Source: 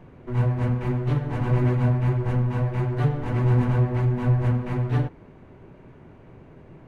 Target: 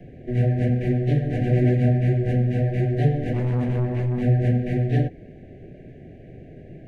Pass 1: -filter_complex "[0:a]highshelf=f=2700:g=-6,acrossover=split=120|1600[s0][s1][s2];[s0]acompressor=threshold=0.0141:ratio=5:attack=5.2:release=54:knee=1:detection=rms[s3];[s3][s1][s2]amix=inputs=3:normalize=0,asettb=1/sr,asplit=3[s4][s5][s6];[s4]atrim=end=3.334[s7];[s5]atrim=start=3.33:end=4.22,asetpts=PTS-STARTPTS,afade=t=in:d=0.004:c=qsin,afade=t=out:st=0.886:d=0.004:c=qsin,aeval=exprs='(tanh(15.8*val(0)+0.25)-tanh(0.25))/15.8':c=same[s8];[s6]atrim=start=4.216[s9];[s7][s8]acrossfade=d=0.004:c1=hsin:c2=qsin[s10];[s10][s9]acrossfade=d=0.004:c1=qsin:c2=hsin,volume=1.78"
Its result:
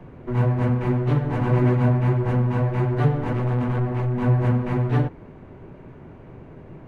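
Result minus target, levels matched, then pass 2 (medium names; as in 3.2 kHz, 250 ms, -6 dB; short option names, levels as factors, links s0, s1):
1 kHz band +6.5 dB
-filter_complex "[0:a]asuperstop=centerf=1100:order=20:qfactor=1.3,highshelf=f=2700:g=-6,acrossover=split=120|1600[s0][s1][s2];[s0]acompressor=threshold=0.0141:ratio=5:attack=5.2:release=54:knee=1:detection=rms[s3];[s3][s1][s2]amix=inputs=3:normalize=0,asettb=1/sr,asplit=3[s4][s5][s6];[s4]atrim=end=3.334[s7];[s5]atrim=start=3.33:end=4.22,asetpts=PTS-STARTPTS,afade=t=in:d=0.004:c=qsin,afade=t=out:st=0.886:d=0.004:c=qsin,aeval=exprs='(tanh(15.8*val(0)+0.25)-tanh(0.25))/15.8':c=same[s8];[s6]atrim=start=4.216[s9];[s7][s8]acrossfade=d=0.004:c1=hsin:c2=qsin[s10];[s10][s9]acrossfade=d=0.004:c1=qsin:c2=hsin,volume=1.78"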